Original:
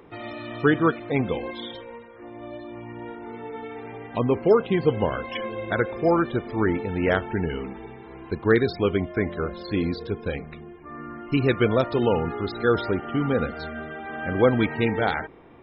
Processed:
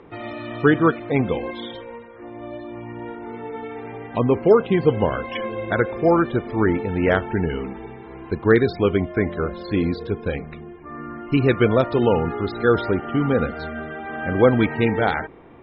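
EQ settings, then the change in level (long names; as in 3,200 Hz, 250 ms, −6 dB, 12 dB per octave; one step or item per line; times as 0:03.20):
high-frequency loss of the air 150 metres
+4.0 dB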